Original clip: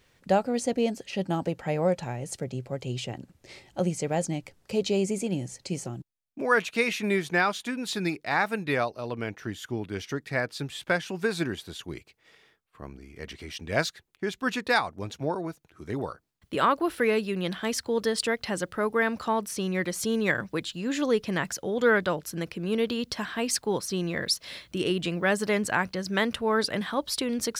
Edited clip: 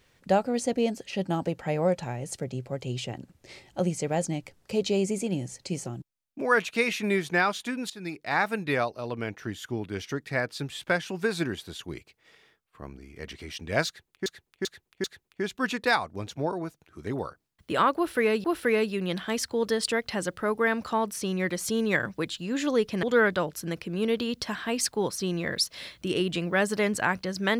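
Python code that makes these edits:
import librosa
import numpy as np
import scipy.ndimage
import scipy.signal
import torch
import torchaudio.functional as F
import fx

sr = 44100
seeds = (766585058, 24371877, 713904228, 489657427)

y = fx.edit(x, sr, fx.fade_in_from(start_s=7.9, length_s=0.47, floor_db=-18.5),
    fx.repeat(start_s=13.87, length_s=0.39, count=4),
    fx.repeat(start_s=16.79, length_s=0.48, count=2),
    fx.cut(start_s=21.38, length_s=0.35), tone=tone)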